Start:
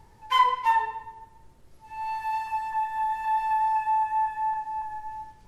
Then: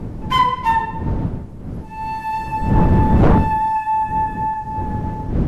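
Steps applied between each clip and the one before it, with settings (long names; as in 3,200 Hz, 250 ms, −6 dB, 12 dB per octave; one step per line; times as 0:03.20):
wind on the microphone 180 Hz −22 dBFS
sine wavefolder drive 8 dB, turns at −1 dBFS
level −6 dB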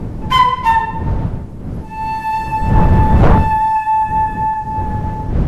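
dynamic equaliser 280 Hz, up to −7 dB, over −31 dBFS, Q 0.97
level +5 dB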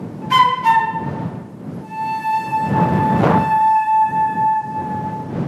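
high-pass filter 140 Hz 24 dB per octave
on a send: delay with a band-pass on its return 71 ms, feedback 67%, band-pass 1,300 Hz, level −13.5 dB
on the sum: level −1 dB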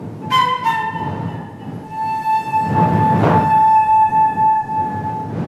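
echo with shifted repeats 317 ms, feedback 63%, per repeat −38 Hz, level −22 dB
coupled-rooms reverb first 0.41 s, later 2.4 s, from −18 dB, DRR 4 dB
level −1 dB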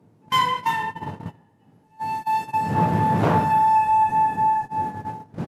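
noise gate −21 dBFS, range −21 dB
high-shelf EQ 5,100 Hz +7 dB
level −6 dB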